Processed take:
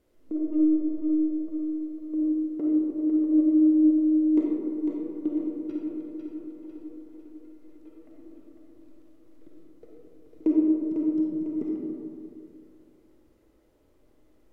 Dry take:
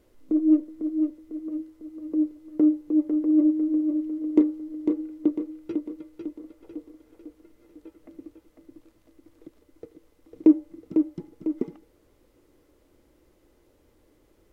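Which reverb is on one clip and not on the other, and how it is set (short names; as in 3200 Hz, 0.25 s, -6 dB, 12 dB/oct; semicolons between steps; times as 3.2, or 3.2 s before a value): digital reverb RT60 2.5 s, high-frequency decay 0.3×, pre-delay 10 ms, DRR -3 dB; gain -8 dB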